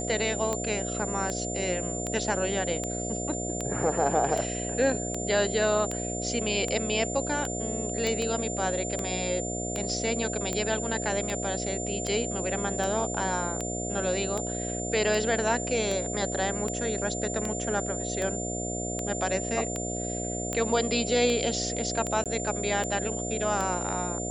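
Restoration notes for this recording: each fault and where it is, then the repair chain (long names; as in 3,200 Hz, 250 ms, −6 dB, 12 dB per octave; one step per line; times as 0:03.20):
mains buzz 60 Hz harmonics 12 −34 dBFS
scratch tick 78 rpm −16 dBFS
whistle 7,200 Hz −34 dBFS
0:08.07: click −15 dBFS
0:22.24–0:22.26: drop-out 17 ms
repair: click removal
hum removal 60 Hz, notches 12
notch filter 7,200 Hz, Q 30
repair the gap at 0:22.24, 17 ms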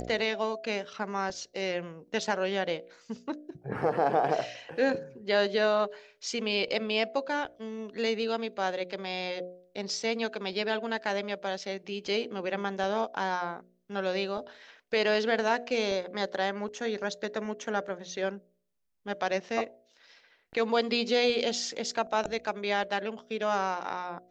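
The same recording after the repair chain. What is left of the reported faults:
none of them is left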